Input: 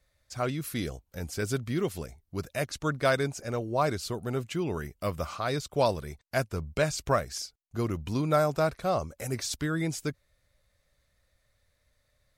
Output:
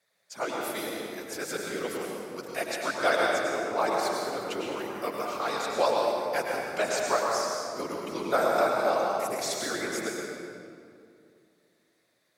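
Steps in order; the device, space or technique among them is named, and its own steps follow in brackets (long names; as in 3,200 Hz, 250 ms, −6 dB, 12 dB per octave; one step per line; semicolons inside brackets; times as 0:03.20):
whispering ghost (random phases in short frames; high-pass filter 430 Hz 12 dB per octave; convolution reverb RT60 2.4 s, pre-delay 94 ms, DRR −1.5 dB)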